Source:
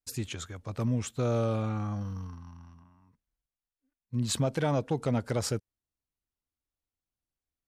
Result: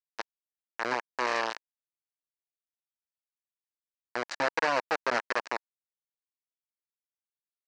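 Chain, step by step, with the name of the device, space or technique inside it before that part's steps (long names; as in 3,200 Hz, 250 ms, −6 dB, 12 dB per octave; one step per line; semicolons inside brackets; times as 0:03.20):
hand-held game console (bit reduction 4 bits; loudspeaker in its box 490–5,200 Hz, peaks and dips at 940 Hz +4 dB, 1,700 Hz +7 dB, 3,400 Hz −9 dB)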